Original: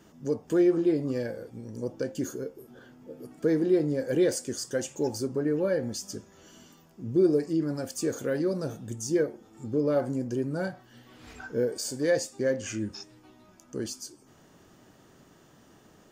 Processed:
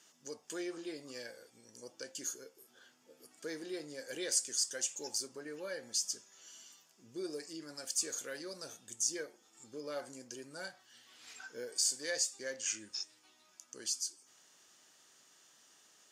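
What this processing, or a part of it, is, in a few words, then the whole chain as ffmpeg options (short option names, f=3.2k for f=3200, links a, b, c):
piezo pickup straight into a mixer: -af "lowpass=7.7k,aderivative,volume=6.5dB"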